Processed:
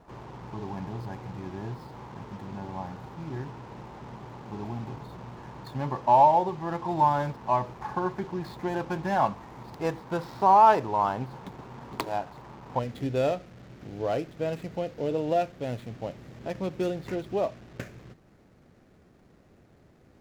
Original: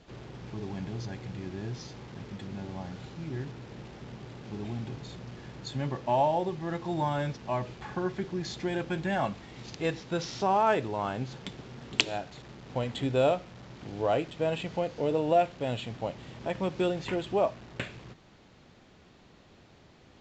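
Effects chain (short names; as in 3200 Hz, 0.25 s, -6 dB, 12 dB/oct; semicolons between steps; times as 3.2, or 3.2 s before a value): median filter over 15 samples; bell 950 Hz +12 dB 0.71 oct, from 12.79 s -5 dB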